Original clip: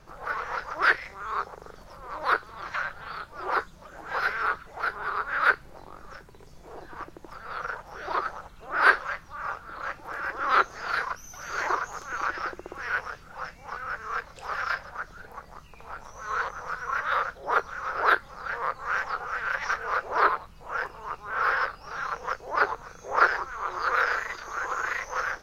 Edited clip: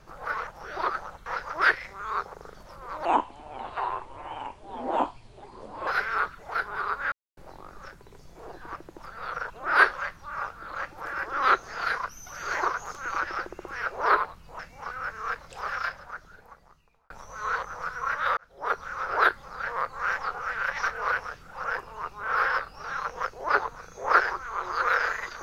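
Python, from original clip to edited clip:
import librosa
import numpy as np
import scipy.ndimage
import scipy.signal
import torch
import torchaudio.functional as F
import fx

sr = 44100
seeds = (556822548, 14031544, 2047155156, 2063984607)

y = fx.edit(x, sr, fx.speed_span(start_s=2.26, length_s=1.89, speed=0.67),
    fx.silence(start_s=5.4, length_s=0.25),
    fx.move(start_s=7.78, length_s=0.79, to_s=0.47),
    fx.swap(start_s=12.93, length_s=0.52, other_s=19.98, other_length_s=0.73),
    fx.fade_out_span(start_s=14.44, length_s=1.52),
    fx.fade_in_span(start_s=17.23, length_s=0.5), tone=tone)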